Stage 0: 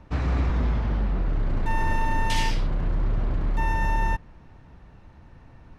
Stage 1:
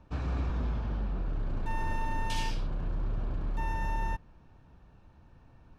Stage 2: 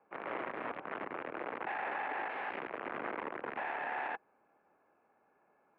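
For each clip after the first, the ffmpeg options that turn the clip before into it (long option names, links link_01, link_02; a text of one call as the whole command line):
ffmpeg -i in.wav -af "bandreject=frequency=2000:width=5.7,volume=-8dB" out.wav
ffmpeg -i in.wav -af "aeval=exprs='(mod(23.7*val(0)+1,2)-1)/23.7':channel_layout=same,highpass=frequency=420:width_type=q:width=0.5412,highpass=frequency=420:width_type=q:width=1.307,lowpass=frequency=2400:width_type=q:width=0.5176,lowpass=frequency=2400:width_type=q:width=0.7071,lowpass=frequency=2400:width_type=q:width=1.932,afreqshift=-94,volume=-3.5dB" out.wav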